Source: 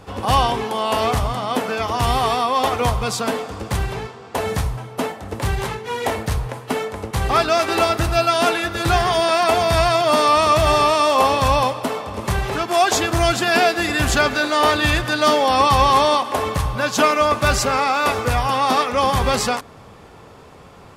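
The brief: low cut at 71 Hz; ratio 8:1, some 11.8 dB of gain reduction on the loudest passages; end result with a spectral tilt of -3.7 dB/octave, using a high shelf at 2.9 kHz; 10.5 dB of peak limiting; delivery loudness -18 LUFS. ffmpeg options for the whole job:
-af "highpass=71,highshelf=f=2900:g=4,acompressor=threshold=0.0708:ratio=8,volume=4.47,alimiter=limit=0.355:level=0:latency=1"

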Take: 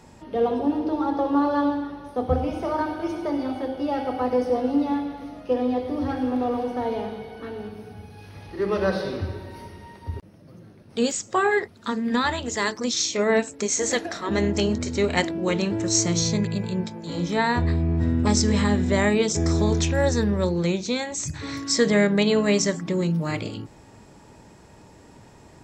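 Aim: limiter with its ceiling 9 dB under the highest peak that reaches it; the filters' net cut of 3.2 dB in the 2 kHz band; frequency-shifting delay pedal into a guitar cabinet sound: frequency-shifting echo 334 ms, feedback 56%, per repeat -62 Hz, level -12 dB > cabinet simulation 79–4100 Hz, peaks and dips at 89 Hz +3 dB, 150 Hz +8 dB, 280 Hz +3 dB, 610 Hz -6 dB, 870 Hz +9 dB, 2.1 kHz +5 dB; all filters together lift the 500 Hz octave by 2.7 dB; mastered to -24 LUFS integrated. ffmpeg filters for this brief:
-filter_complex "[0:a]equalizer=f=500:t=o:g=4.5,equalizer=f=2000:t=o:g=-7,alimiter=limit=0.168:level=0:latency=1,asplit=7[s0][s1][s2][s3][s4][s5][s6];[s1]adelay=334,afreqshift=-62,volume=0.251[s7];[s2]adelay=668,afreqshift=-124,volume=0.141[s8];[s3]adelay=1002,afreqshift=-186,volume=0.0785[s9];[s4]adelay=1336,afreqshift=-248,volume=0.0442[s10];[s5]adelay=1670,afreqshift=-310,volume=0.0248[s11];[s6]adelay=2004,afreqshift=-372,volume=0.0138[s12];[s0][s7][s8][s9][s10][s11][s12]amix=inputs=7:normalize=0,highpass=79,equalizer=f=89:t=q:w=4:g=3,equalizer=f=150:t=q:w=4:g=8,equalizer=f=280:t=q:w=4:g=3,equalizer=f=610:t=q:w=4:g=-6,equalizer=f=870:t=q:w=4:g=9,equalizer=f=2100:t=q:w=4:g=5,lowpass=f=4100:w=0.5412,lowpass=f=4100:w=1.3066,volume=0.944"

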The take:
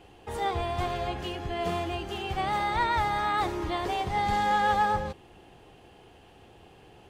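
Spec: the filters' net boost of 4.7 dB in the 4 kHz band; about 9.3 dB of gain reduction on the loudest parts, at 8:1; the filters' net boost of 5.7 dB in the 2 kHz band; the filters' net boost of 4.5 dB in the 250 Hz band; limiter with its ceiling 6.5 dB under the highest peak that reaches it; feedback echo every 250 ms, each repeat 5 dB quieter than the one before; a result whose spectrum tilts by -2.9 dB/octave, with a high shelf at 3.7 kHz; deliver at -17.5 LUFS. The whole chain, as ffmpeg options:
-af "equalizer=f=250:t=o:g=7,equalizer=f=2000:t=o:g=7,highshelf=f=3700:g=-9,equalizer=f=4000:t=o:g=8.5,acompressor=threshold=0.0355:ratio=8,alimiter=level_in=1.5:limit=0.0631:level=0:latency=1,volume=0.668,aecho=1:1:250|500|750|1000|1250|1500|1750:0.562|0.315|0.176|0.0988|0.0553|0.031|0.0173,volume=7.08"

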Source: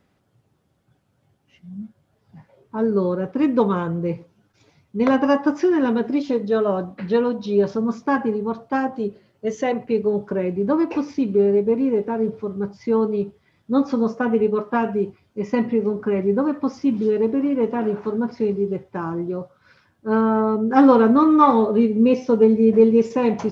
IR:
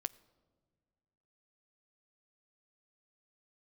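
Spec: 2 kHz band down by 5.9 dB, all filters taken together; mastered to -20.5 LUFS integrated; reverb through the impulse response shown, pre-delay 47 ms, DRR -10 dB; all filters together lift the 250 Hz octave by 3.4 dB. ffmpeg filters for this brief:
-filter_complex "[0:a]equalizer=f=250:t=o:g=4,equalizer=f=2000:t=o:g=-8.5,asplit=2[s0][s1];[1:a]atrim=start_sample=2205,adelay=47[s2];[s1][s2]afir=irnorm=-1:irlink=0,volume=3.55[s3];[s0][s3]amix=inputs=2:normalize=0,volume=0.237"

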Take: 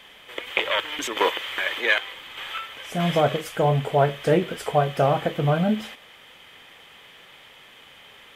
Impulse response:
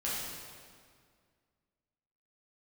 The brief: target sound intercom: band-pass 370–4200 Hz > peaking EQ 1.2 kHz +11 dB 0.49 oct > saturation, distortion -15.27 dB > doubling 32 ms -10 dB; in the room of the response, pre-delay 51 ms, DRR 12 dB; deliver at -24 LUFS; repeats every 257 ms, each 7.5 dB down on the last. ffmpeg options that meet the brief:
-filter_complex "[0:a]aecho=1:1:257|514|771|1028|1285:0.422|0.177|0.0744|0.0312|0.0131,asplit=2[s0][s1];[1:a]atrim=start_sample=2205,adelay=51[s2];[s1][s2]afir=irnorm=-1:irlink=0,volume=0.133[s3];[s0][s3]amix=inputs=2:normalize=0,highpass=370,lowpass=4200,equalizer=f=1200:t=o:w=0.49:g=11,asoftclip=threshold=0.237,asplit=2[s4][s5];[s5]adelay=32,volume=0.316[s6];[s4][s6]amix=inputs=2:normalize=0,volume=0.944"

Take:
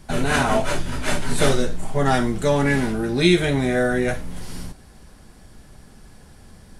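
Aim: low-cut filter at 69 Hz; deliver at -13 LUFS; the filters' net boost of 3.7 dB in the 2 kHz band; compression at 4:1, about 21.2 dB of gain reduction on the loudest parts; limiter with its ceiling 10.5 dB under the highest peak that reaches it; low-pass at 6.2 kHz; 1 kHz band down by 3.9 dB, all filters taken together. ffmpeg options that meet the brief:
-af "highpass=69,lowpass=6200,equalizer=f=1000:t=o:g=-8,equalizer=f=2000:t=o:g=7.5,acompressor=threshold=0.0141:ratio=4,volume=28.2,alimiter=limit=0.75:level=0:latency=1"

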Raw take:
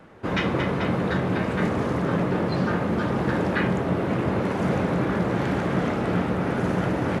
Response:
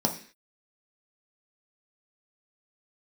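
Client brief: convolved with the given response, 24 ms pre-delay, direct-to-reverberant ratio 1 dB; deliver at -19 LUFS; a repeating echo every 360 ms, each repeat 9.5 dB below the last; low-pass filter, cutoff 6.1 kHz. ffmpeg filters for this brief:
-filter_complex "[0:a]lowpass=6100,aecho=1:1:360|720|1080|1440:0.335|0.111|0.0365|0.012,asplit=2[s0][s1];[1:a]atrim=start_sample=2205,adelay=24[s2];[s1][s2]afir=irnorm=-1:irlink=0,volume=0.299[s3];[s0][s3]amix=inputs=2:normalize=0,volume=0.75"

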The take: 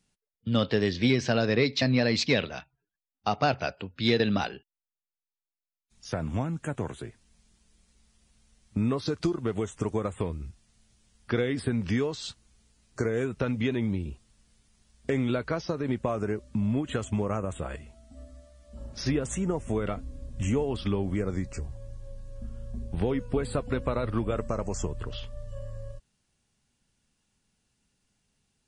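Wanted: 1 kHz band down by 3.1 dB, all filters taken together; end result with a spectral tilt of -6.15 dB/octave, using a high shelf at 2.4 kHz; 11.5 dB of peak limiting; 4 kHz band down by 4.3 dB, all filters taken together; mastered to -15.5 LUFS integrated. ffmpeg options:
-af "equalizer=f=1000:t=o:g=-5,highshelf=f=2400:g=3.5,equalizer=f=4000:t=o:g=-8,volume=9.44,alimiter=limit=0.631:level=0:latency=1"

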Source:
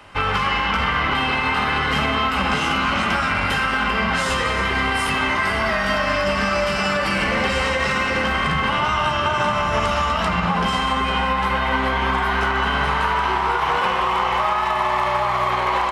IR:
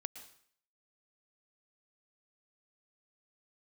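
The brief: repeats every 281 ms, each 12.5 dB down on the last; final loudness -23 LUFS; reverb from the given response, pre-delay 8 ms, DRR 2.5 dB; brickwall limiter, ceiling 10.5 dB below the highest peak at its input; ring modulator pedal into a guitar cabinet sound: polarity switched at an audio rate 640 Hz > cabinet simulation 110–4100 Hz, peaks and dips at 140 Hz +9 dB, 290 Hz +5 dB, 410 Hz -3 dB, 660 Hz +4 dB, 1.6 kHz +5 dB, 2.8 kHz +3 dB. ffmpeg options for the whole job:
-filter_complex "[0:a]alimiter=limit=0.141:level=0:latency=1,aecho=1:1:281|562|843:0.237|0.0569|0.0137,asplit=2[s0][s1];[1:a]atrim=start_sample=2205,adelay=8[s2];[s1][s2]afir=irnorm=-1:irlink=0,volume=1[s3];[s0][s3]amix=inputs=2:normalize=0,aeval=exprs='val(0)*sgn(sin(2*PI*640*n/s))':c=same,highpass=110,equalizer=f=140:t=q:w=4:g=9,equalizer=f=290:t=q:w=4:g=5,equalizer=f=410:t=q:w=4:g=-3,equalizer=f=660:t=q:w=4:g=4,equalizer=f=1600:t=q:w=4:g=5,equalizer=f=2800:t=q:w=4:g=3,lowpass=f=4100:w=0.5412,lowpass=f=4100:w=1.3066,volume=0.794"

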